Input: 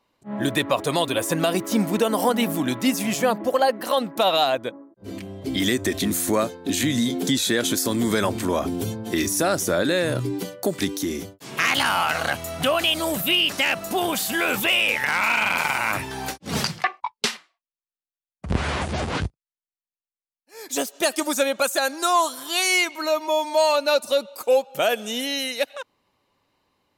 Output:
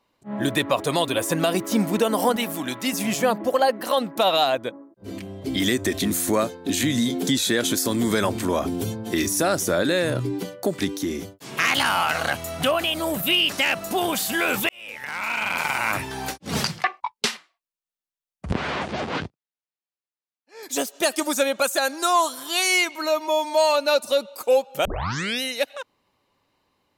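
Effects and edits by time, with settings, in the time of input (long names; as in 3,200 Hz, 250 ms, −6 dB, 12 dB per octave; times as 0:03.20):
0:02.36–0:02.93: low-shelf EQ 460 Hz −8.5 dB
0:10.10–0:11.23: high-shelf EQ 5,000 Hz −5.5 dB
0:12.71–0:13.23: parametric band 5,500 Hz −5.5 dB 2.4 octaves
0:14.69–0:15.87: fade in
0:18.53–0:20.63: band-pass filter 170–4,700 Hz
0:24.85: tape start 0.58 s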